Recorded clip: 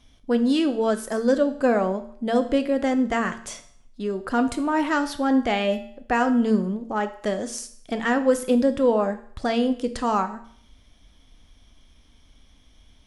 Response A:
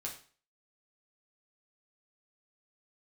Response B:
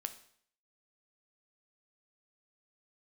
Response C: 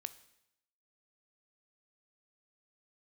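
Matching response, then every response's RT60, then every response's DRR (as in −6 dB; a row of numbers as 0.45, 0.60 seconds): B; 0.40, 0.60, 0.80 seconds; −2.0, 8.5, 12.5 decibels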